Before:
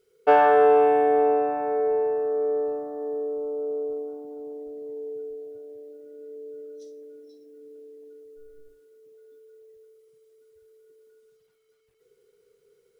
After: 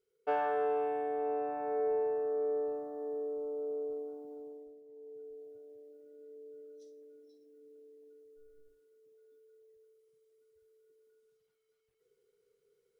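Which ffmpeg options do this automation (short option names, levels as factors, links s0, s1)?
-af "volume=1.12,afade=t=in:st=1.18:d=0.64:silence=0.446684,afade=t=out:st=4.34:d=0.5:silence=0.251189,afade=t=in:st=4.84:d=0.57:silence=0.354813"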